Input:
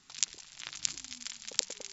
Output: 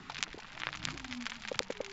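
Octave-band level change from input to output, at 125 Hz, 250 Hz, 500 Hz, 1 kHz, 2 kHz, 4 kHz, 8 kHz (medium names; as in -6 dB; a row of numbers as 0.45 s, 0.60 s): +12.0 dB, +12.5 dB, +10.5 dB, +11.0 dB, +6.5 dB, -3.5 dB, no reading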